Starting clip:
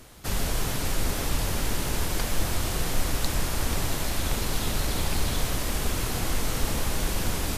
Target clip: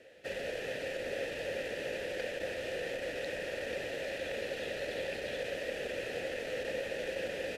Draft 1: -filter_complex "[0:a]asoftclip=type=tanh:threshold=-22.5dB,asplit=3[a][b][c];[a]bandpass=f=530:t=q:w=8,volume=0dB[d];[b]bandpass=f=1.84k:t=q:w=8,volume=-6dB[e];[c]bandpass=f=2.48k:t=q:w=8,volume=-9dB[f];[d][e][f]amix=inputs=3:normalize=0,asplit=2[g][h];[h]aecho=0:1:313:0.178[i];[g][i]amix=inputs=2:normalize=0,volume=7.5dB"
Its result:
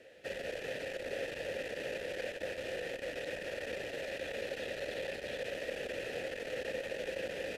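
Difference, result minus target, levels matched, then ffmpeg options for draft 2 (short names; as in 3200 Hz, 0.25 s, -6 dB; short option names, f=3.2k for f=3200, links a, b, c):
soft clip: distortion +11 dB
-filter_complex "[0:a]asoftclip=type=tanh:threshold=-14.5dB,asplit=3[a][b][c];[a]bandpass=f=530:t=q:w=8,volume=0dB[d];[b]bandpass=f=1.84k:t=q:w=8,volume=-6dB[e];[c]bandpass=f=2.48k:t=q:w=8,volume=-9dB[f];[d][e][f]amix=inputs=3:normalize=0,asplit=2[g][h];[h]aecho=0:1:313:0.178[i];[g][i]amix=inputs=2:normalize=0,volume=7.5dB"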